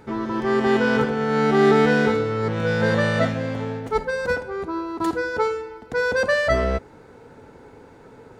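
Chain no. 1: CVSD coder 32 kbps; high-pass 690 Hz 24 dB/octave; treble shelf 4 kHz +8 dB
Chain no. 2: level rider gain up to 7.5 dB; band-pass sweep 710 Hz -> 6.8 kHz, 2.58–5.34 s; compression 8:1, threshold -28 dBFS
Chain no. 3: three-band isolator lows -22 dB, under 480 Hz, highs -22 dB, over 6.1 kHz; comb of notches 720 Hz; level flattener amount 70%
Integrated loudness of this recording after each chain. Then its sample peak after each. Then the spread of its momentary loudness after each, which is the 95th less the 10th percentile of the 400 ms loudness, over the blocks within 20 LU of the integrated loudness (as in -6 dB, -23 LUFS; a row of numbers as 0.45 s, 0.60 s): -26.0 LUFS, -33.5 LUFS, -22.5 LUFS; -11.5 dBFS, -19.0 dBFS, -9.5 dBFS; 11 LU, 12 LU, 9 LU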